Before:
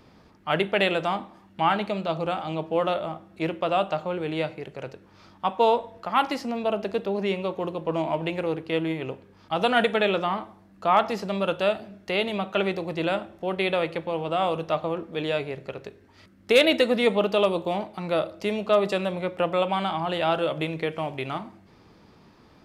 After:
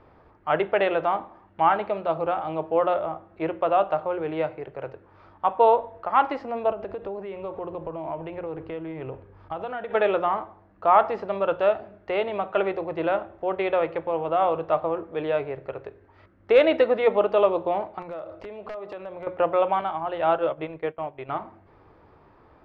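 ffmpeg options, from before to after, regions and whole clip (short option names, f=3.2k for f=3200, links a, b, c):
-filter_complex "[0:a]asettb=1/sr,asplit=3[a][b][c];[a]atrim=end=6.714[d];[b]atrim=start=6.71:end=9.91,asetpts=PTS-STARTPTS,afade=t=in:d=0.004:c=qsin,afade=t=out:st=3.196:d=0.004:c=qsin,lowshelf=f=140:g=10.5,acompressor=threshold=-29dB:ratio=12:attack=3.2:release=140:knee=1:detection=peak[e];[c]atrim=start=9.906[f];[d][e]acrossfade=d=0.004:c1=hsin:c2=qsin[g];[g][f]acrossfade=d=0.004:c1=qsin:c2=hsin,asettb=1/sr,asplit=3[h][i][j];[h]atrim=end=18.024[k];[i]atrim=start=18.02:end=19.27,asetpts=PTS-STARTPTS,afade=t=in:d=0.004:c=qsin,afade=t=out:st=1.246:d=0.004:c=qsin,acompressor=threshold=-33dB:ratio=12:attack=3.2:release=140:knee=1:detection=peak,aeval=exprs='(mod(26.6*val(0)+1,2)-1)/26.6':c=same[l];[j]atrim=start=19.266[m];[k][l]acrossfade=d=0.004:c1=hsin:c2=qsin[n];[n][m]acrossfade=d=0.004:c1=qsin:c2=hsin,asettb=1/sr,asplit=3[o][p][q];[o]atrim=end=19.814[r];[p]atrim=start=19.81:end=21.29,asetpts=PTS-STARTPTS,afade=t=in:d=0.004:c=qsin,afade=t=out:st=1.476:d=0.004:c=qsin,agate=range=-33dB:threshold=-24dB:ratio=3:release=100:detection=peak,acompressor=mode=upward:threshold=-28dB:ratio=2.5:attack=3.2:release=140:knee=2.83:detection=peak[s];[q]atrim=start=21.286[t];[r][s]acrossfade=d=0.004:c1=hsin:c2=qsin[u];[u][t]acrossfade=d=0.004:c1=qsin:c2=hsin,lowpass=1.4k,equalizer=f=200:w=1.3:g=-13.5,bandreject=f=60:t=h:w=6,bandreject=f=120:t=h:w=6,bandreject=f=180:t=h:w=6,bandreject=f=240:t=h:w=6,volume=4.5dB"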